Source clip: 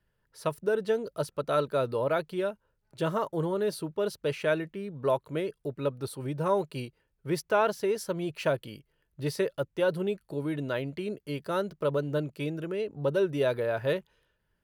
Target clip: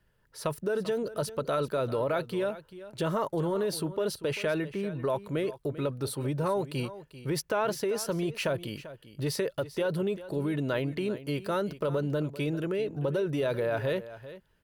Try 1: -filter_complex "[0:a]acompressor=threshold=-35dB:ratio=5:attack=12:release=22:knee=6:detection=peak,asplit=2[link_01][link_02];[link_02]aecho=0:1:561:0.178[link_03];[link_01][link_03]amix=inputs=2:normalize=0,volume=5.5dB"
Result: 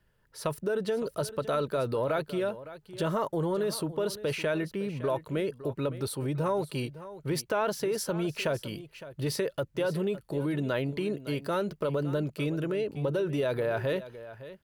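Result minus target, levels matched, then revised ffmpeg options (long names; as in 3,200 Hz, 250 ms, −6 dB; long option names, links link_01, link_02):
echo 169 ms late
-filter_complex "[0:a]acompressor=threshold=-35dB:ratio=5:attack=12:release=22:knee=6:detection=peak,asplit=2[link_01][link_02];[link_02]aecho=0:1:392:0.178[link_03];[link_01][link_03]amix=inputs=2:normalize=0,volume=5.5dB"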